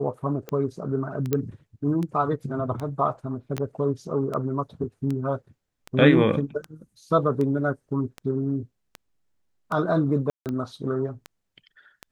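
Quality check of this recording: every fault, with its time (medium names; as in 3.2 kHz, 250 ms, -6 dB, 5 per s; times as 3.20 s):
tick 78 rpm -19 dBFS
1.33 s: pop -10 dBFS
3.58 s: pop -14 dBFS
10.30–10.46 s: dropout 158 ms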